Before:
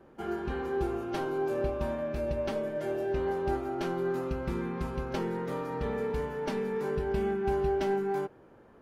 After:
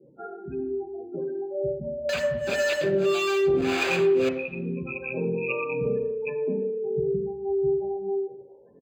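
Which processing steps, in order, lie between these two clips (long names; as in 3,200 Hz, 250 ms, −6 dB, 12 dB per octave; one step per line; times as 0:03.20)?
loose part that buzzes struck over −39 dBFS, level −23 dBFS
gate on every frequency bin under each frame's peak −10 dB strong
high-pass filter 44 Hz 12 dB per octave
low-shelf EQ 140 Hz −11 dB
comb filter 6.9 ms, depth 31%
dynamic equaliser 500 Hz, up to +5 dB, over −47 dBFS, Q 3.7
0:02.09–0:04.29: log-companded quantiser 2 bits
two-band tremolo in antiphase 1.7 Hz, depth 100%, crossover 520 Hz
convolution reverb RT60 0.85 s, pre-delay 3 ms, DRR 5.5 dB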